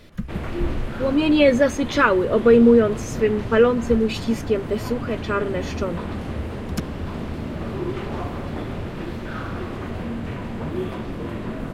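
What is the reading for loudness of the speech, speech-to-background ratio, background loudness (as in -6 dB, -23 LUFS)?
-19.5 LUFS, 11.0 dB, -30.5 LUFS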